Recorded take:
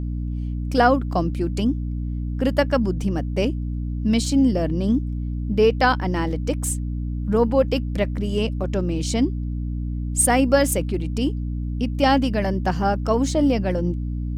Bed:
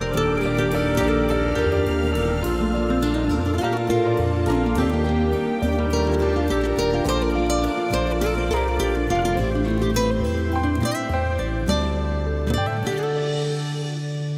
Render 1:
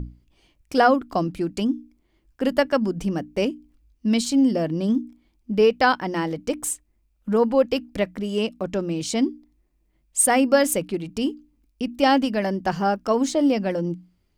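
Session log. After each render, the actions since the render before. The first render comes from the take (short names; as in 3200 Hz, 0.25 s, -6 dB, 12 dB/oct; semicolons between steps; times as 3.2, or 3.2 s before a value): notches 60/120/180/240/300 Hz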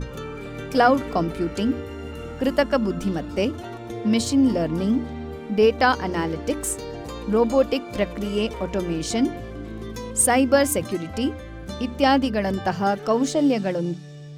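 add bed -13 dB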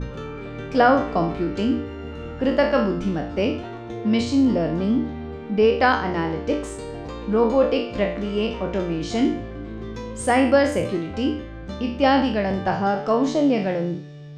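spectral trails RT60 0.52 s; air absorption 150 m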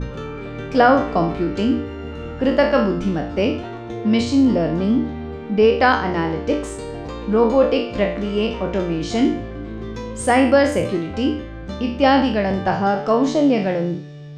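gain +3 dB; limiter -3 dBFS, peak gain reduction 1 dB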